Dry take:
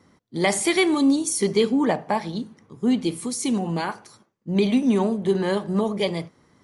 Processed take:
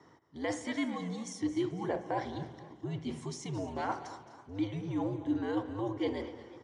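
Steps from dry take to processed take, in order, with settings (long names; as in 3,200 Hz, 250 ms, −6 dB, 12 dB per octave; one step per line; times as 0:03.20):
reversed playback
downward compressor 5 to 1, threshold −33 dBFS, peak gain reduction 16.5 dB
reversed playback
spring reverb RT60 1.5 s, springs 55 ms, chirp 70 ms, DRR 14 dB
frequency shifter −94 Hz
loudspeaker in its box 160–6,200 Hz, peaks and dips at 200 Hz −9 dB, 310 Hz +6 dB, 470 Hz +3 dB, 930 Hz +4 dB, 2,600 Hz −6 dB, 4,300 Hz −9 dB
repeating echo 217 ms, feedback 26%, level −15.5 dB
feedback echo with a swinging delay time 247 ms, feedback 56%, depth 120 cents, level −17.5 dB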